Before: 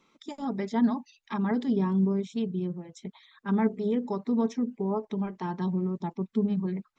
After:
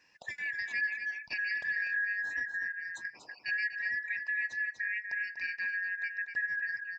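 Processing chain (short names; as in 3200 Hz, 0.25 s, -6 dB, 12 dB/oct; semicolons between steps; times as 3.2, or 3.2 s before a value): four-band scrambler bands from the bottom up 3142; echo 0.243 s -8.5 dB; compressor 2:1, threshold -37 dBFS, peak gain reduction 10 dB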